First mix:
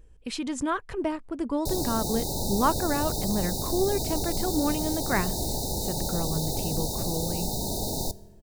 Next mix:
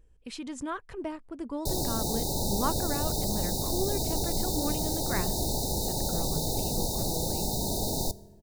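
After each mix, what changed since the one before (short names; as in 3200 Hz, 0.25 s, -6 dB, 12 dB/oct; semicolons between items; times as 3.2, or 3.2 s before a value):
speech -7.0 dB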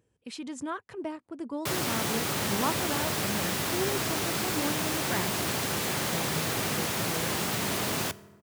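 background: remove brick-wall FIR band-stop 940–3600 Hz; master: add HPF 100 Hz 24 dB/oct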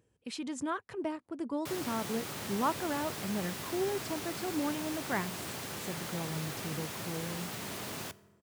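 background -10.5 dB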